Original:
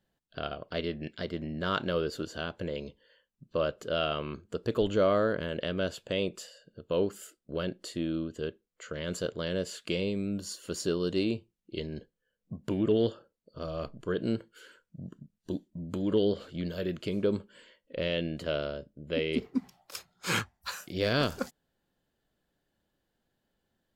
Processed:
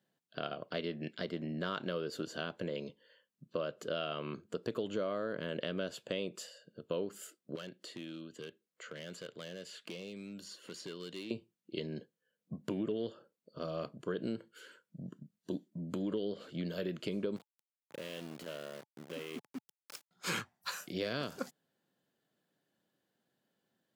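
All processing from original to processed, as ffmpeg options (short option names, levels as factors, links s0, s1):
-filter_complex "[0:a]asettb=1/sr,asplit=3[s0][s1][s2];[s0]atrim=end=7.554[s3];[s1]atrim=start=7.55:end=11.31,asetpts=PTS-STARTPTS,afade=t=in:d=0.004:c=qsin,afade=t=out:st=3.756:d=0.004:c=qsin,highpass=f=79:w=0.5412,highpass=f=79:w=1.3066,acrossover=split=1600|4100[s4][s5][s6];[s4]acompressor=threshold=0.00708:ratio=4[s7];[s5]acompressor=threshold=0.00562:ratio=4[s8];[s6]acompressor=threshold=0.00141:ratio=4[s9];[s7][s8][s9]amix=inputs=3:normalize=0,asoftclip=type=hard:threshold=0.0158[s10];[s2]atrim=start=11.306[s11];[s3][s10]acrossfade=d=0.004:c1=hsin:c2=qsin[s12];[s12][s11]acrossfade=d=0.004:c1=qsin:c2=hsin,asettb=1/sr,asplit=3[s13][s14][s15];[s13]atrim=end=17.364[s16];[s14]atrim=start=17.36:end=20.11,asetpts=PTS-STARTPTS,afade=t=in:d=0.004:c=qsin,afade=t=out:st=2.746:d=0.004:c=qsin,acompressor=threshold=0.00891:ratio=3:attack=3.2:release=140:knee=1:detection=peak,aeval=exprs='val(0)*gte(abs(val(0)),0.00631)':c=same[s17];[s15]atrim=start=20.106[s18];[s16][s17]acrossfade=d=0.004:c1=hsin:c2=qsin[s19];[s19][s18]acrossfade=d=0.004:c1=qsin:c2=hsin,highpass=f=130:w=0.5412,highpass=f=130:w=1.3066,bandreject=f=860:w=23,acompressor=threshold=0.0282:ratio=6,volume=0.841"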